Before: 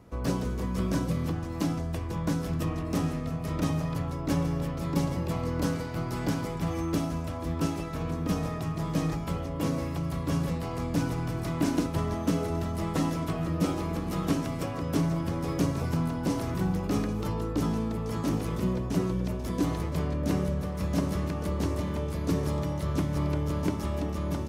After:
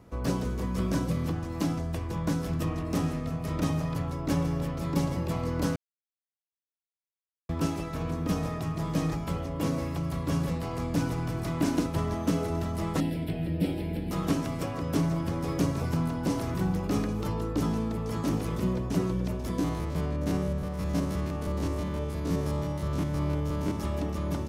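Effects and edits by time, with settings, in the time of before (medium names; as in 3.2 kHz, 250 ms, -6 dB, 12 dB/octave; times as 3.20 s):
5.76–7.49 s: mute
13.00–14.11 s: static phaser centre 2.8 kHz, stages 4
19.59–23.77 s: spectrogram pixelated in time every 50 ms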